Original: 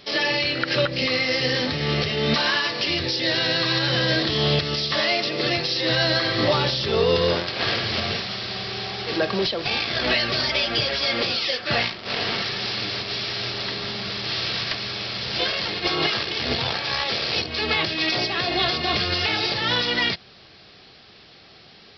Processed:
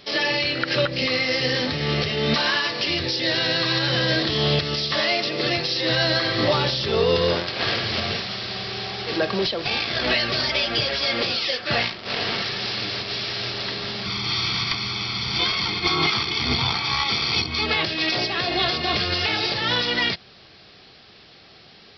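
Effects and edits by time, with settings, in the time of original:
0:14.06–0:17.66: comb filter 0.9 ms, depth 80%

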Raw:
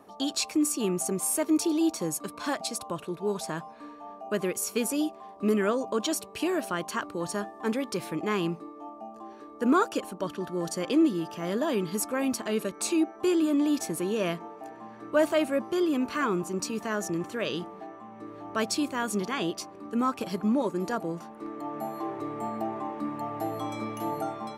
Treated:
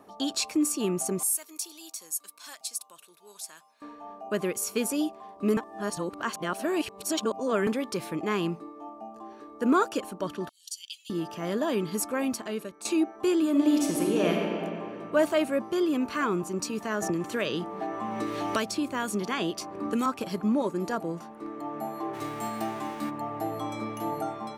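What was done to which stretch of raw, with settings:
0:01.23–0:03.82: first difference
0:05.57–0:07.67: reverse
0:10.49–0:11.10: Chebyshev high-pass filter 2,900 Hz, order 5
0:12.18–0:12.85: fade out, to −12.5 dB
0:13.50–0:14.46: thrown reverb, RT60 2.6 s, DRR −1 dB
0:17.02–0:20.06: multiband upward and downward compressor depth 100%
0:22.13–0:23.09: spectral envelope flattened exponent 0.6

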